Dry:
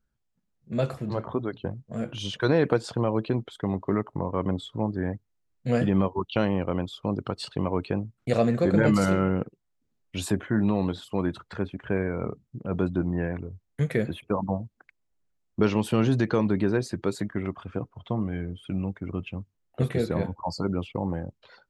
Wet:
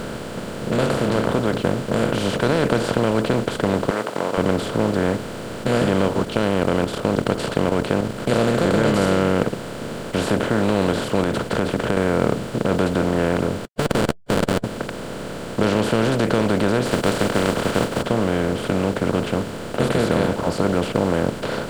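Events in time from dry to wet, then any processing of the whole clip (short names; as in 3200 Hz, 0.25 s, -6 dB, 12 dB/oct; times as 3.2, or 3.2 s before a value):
3.9–4.38 HPF 780 Hz 24 dB/oct
6.25–8.2 level quantiser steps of 10 dB
11.23–11.97 compressor, threshold -30 dBFS
13.65–14.64 Schmitt trigger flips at -26 dBFS
16.85–18.01 spectral contrast lowered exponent 0.4
whole clip: per-bin compression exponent 0.2; gain -3 dB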